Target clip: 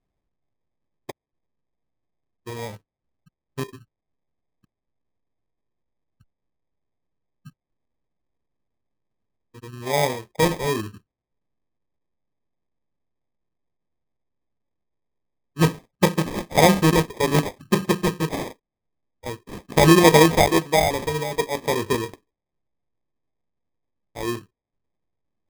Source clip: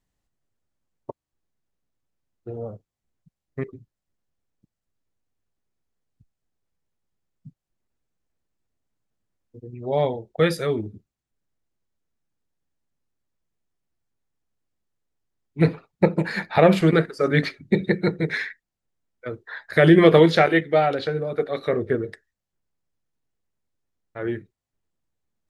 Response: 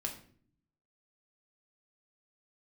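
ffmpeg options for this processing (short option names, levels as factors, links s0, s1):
-af "acrusher=samples=31:mix=1:aa=0.000001"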